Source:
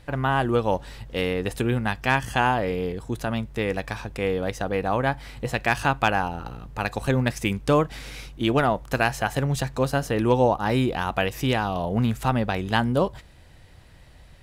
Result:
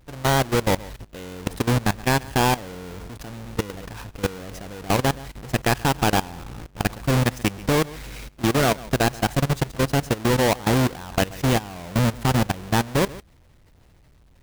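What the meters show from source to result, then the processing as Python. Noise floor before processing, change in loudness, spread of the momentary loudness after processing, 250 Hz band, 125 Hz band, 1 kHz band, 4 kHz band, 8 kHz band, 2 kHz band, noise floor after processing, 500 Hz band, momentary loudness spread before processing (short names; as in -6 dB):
-49 dBFS, +1.5 dB, 17 LU, +1.5 dB, +2.5 dB, -0.5 dB, +4.0 dB, +9.5 dB, -0.5 dB, -54 dBFS, -0.5 dB, 8 LU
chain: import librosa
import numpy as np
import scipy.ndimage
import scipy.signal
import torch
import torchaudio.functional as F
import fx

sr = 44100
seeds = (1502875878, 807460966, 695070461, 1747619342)

y = fx.halfwave_hold(x, sr)
y = y + 10.0 ** (-15.0 / 20.0) * np.pad(y, (int(132 * sr / 1000.0), 0))[:len(y)]
y = fx.level_steps(y, sr, step_db=18)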